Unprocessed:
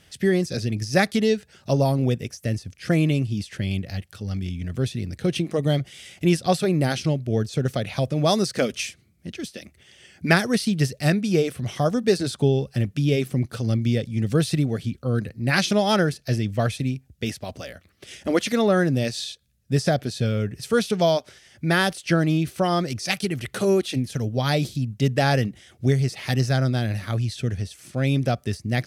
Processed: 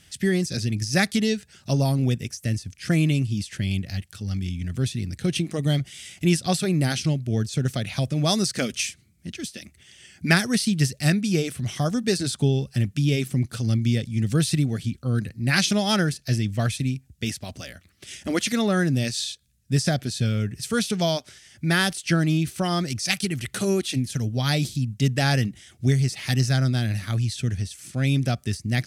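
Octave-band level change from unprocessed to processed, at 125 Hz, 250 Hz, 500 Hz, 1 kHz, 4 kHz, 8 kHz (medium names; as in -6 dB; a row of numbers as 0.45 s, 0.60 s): +0.5 dB, -0.5 dB, -6.0 dB, -4.0 dB, +2.0 dB, +4.5 dB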